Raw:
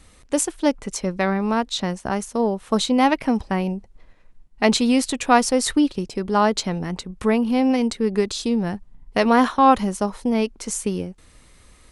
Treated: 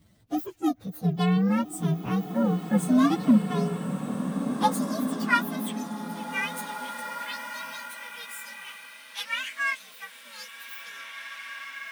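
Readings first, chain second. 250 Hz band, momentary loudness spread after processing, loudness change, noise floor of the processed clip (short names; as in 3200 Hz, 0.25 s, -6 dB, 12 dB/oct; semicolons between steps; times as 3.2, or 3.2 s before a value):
-5.5 dB, 17 LU, -6.5 dB, -49 dBFS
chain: inharmonic rescaling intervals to 129%; low shelf 210 Hz +9.5 dB; high-pass sweep 120 Hz -> 2400 Hz, 2.75–5.88; bloom reverb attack 2.17 s, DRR 5.5 dB; gain -7 dB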